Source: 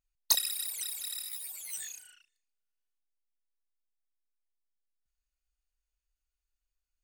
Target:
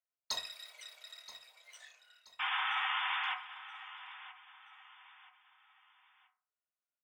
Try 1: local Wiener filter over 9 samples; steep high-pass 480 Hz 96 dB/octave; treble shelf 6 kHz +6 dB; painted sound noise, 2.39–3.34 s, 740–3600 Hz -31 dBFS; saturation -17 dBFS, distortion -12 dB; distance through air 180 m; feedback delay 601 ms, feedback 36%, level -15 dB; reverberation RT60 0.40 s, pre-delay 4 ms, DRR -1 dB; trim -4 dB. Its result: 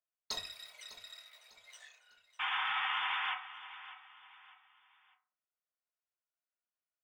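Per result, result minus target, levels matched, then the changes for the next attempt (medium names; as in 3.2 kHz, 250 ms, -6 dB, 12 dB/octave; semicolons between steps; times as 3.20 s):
echo 376 ms early; saturation: distortion +9 dB
change: feedback delay 977 ms, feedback 36%, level -15 dB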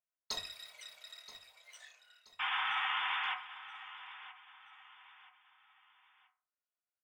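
saturation: distortion +9 dB
change: saturation -9 dBFS, distortion -21 dB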